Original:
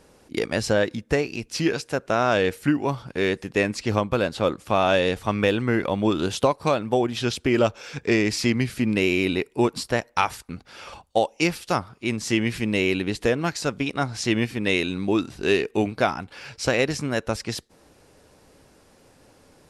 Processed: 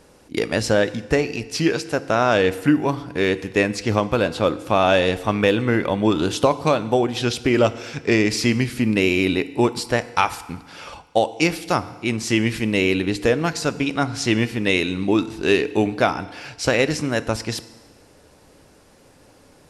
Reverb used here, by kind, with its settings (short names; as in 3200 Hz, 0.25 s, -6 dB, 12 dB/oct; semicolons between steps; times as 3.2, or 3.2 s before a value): FDN reverb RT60 1.3 s, low-frequency decay 1×, high-frequency decay 0.9×, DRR 13.5 dB; gain +3 dB